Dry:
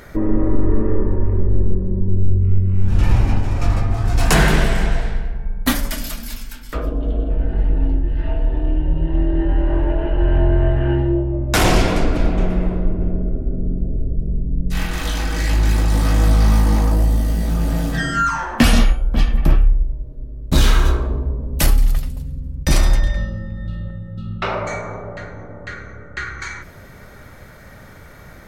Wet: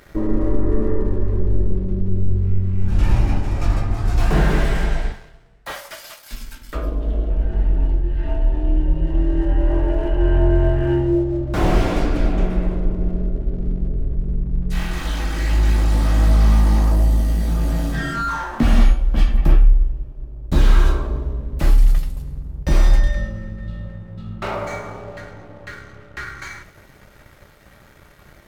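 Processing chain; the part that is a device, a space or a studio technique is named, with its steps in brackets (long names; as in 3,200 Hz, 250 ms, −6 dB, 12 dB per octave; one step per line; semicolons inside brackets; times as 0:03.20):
0:05.12–0:06.31: elliptic high-pass filter 510 Hz
early transistor amplifier (dead-zone distortion −43.5 dBFS; slew-rate limiting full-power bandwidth 110 Hz)
coupled-rooms reverb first 0.26 s, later 1.8 s, from −18 dB, DRR 8 dB
level −2.5 dB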